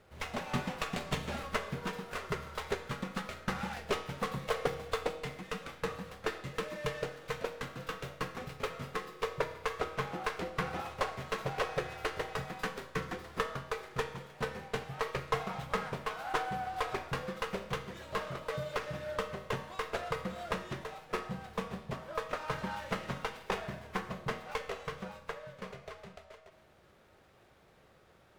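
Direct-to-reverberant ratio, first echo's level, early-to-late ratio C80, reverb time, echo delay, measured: 7.5 dB, none, 12.5 dB, 0.95 s, none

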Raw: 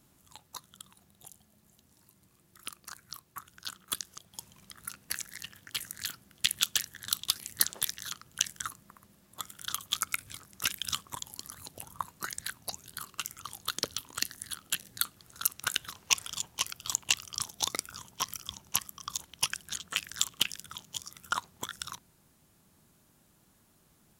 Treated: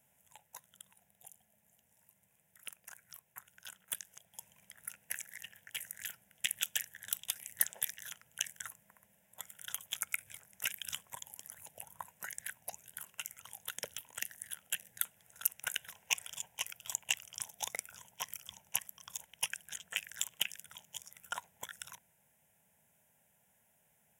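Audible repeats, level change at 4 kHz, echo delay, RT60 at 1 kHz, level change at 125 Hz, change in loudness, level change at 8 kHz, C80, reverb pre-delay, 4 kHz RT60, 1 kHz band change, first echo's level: none, -9.0 dB, none, none, -13.0 dB, -6.0 dB, -6.0 dB, none, none, none, -10.0 dB, none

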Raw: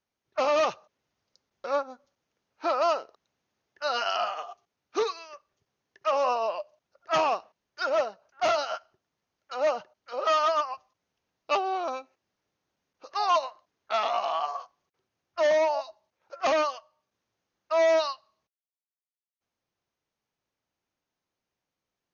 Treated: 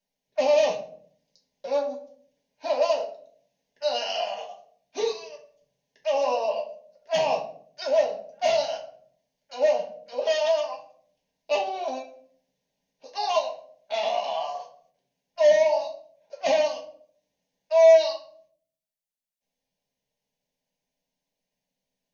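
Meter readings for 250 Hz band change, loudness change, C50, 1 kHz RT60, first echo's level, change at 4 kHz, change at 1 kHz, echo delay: -1.5 dB, +3.0 dB, 9.5 dB, 0.45 s, none, +2.5 dB, -2.5 dB, none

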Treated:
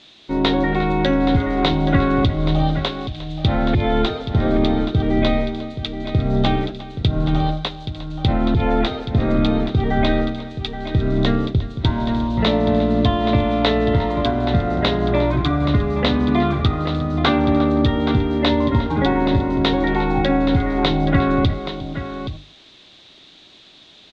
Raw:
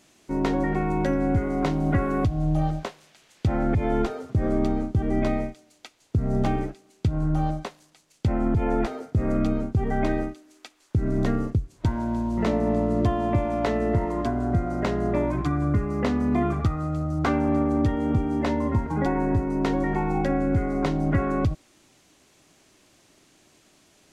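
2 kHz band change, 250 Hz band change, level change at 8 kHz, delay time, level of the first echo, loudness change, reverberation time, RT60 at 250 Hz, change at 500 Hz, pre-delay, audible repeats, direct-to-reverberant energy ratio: +9.0 dB, +6.0 dB, n/a, 0.355 s, -16.0 dB, +6.0 dB, none, none, +6.5 dB, none, 2, none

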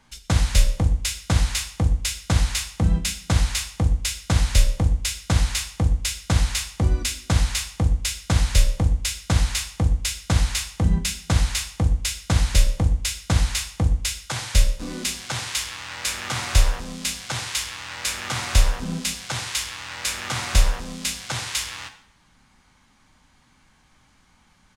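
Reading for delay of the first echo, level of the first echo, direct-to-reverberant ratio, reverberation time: 0.121 s, -21.0 dB, 8.5 dB, 0.65 s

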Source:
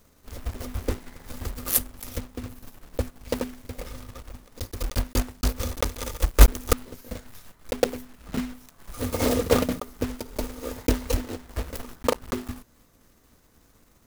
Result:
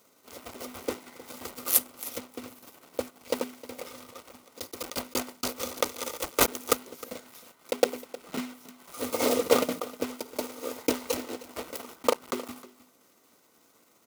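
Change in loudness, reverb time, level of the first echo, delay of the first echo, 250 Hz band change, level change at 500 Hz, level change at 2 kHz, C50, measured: -3.0 dB, none, -18.0 dB, 0.311 s, -5.0 dB, -0.5 dB, -1.0 dB, none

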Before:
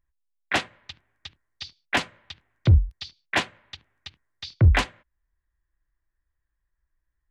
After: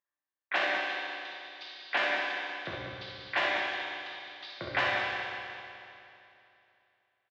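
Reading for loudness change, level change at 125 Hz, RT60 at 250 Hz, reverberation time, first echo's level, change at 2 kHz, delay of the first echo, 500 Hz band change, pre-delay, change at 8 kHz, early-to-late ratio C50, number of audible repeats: -9.0 dB, -28.0 dB, 2.8 s, 2.8 s, -4.0 dB, +0.5 dB, 64 ms, +0.5 dB, 5 ms, under -10 dB, -4.0 dB, 2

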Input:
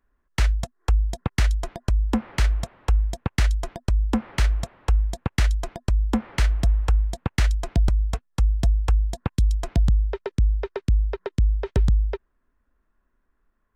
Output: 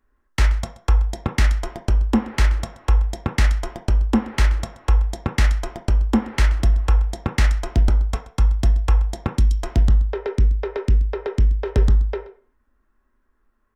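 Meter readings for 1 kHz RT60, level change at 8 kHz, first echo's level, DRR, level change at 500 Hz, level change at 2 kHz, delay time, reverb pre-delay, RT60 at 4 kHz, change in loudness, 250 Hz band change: 0.50 s, +2.0 dB, -18.5 dB, 2.0 dB, +4.5 dB, +4.0 dB, 0.128 s, 3 ms, 0.35 s, +3.5 dB, +4.5 dB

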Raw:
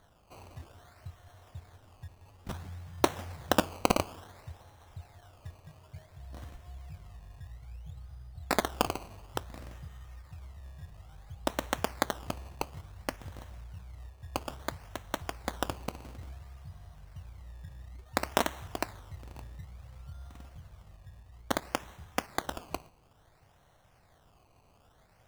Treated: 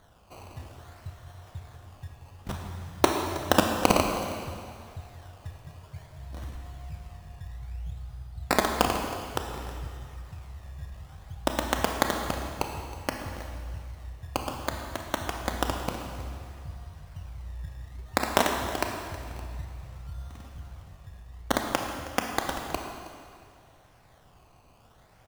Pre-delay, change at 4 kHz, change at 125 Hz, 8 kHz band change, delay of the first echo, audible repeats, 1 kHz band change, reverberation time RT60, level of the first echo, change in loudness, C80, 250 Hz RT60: 26 ms, +5.5 dB, +6.0 dB, +5.5 dB, 0.318 s, 1, +6.0 dB, 2.2 s, -17.0 dB, +5.5 dB, 5.0 dB, 2.1 s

